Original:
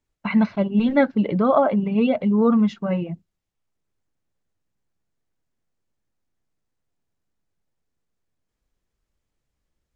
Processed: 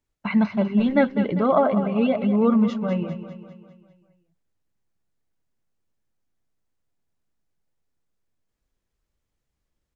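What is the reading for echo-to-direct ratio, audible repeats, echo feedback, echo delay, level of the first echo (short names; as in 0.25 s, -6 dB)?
-9.5 dB, 5, 52%, 0.199 s, -11.0 dB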